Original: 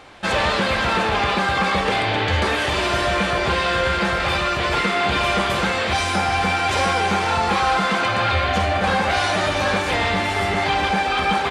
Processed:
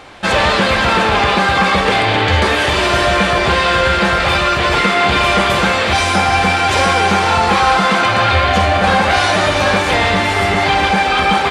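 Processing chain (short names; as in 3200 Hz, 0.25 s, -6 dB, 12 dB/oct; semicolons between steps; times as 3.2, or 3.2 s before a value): thinning echo 0.184 s, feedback 73%, level -14 dB; gain +6.5 dB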